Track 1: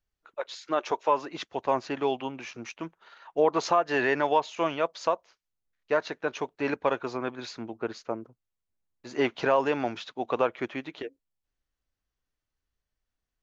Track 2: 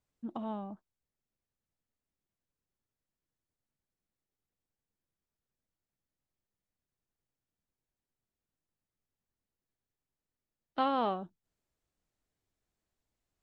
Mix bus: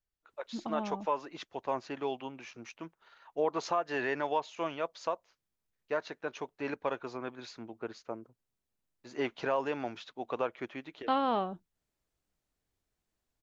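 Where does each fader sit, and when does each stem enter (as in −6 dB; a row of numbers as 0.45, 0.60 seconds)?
−7.5, +1.0 decibels; 0.00, 0.30 seconds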